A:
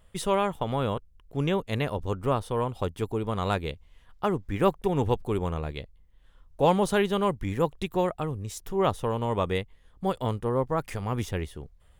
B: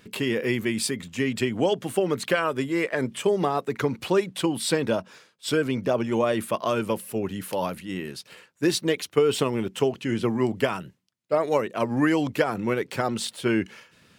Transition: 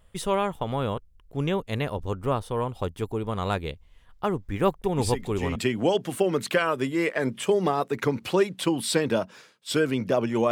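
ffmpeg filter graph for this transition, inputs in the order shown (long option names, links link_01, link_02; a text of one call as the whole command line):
ffmpeg -i cue0.wav -i cue1.wav -filter_complex "[1:a]asplit=2[link_01][link_02];[0:a]apad=whole_dur=10.51,atrim=end=10.51,atrim=end=5.562[link_03];[link_02]atrim=start=1.328:end=6.28[link_04];[link_01]atrim=start=0.75:end=1.33,asetpts=PTS-STARTPTS,volume=-6dB,afade=type=in:duration=0.004:curve=hsin,afade=type=out:start_time=0.576:duration=0.004:curve=hsin,adelay=4980[link_05];[link_03][link_04]acrossfade=duration=0.004:curve1=hsin:curve2=hsin[link_06];[link_06][link_05]amix=inputs=2:normalize=0" out.wav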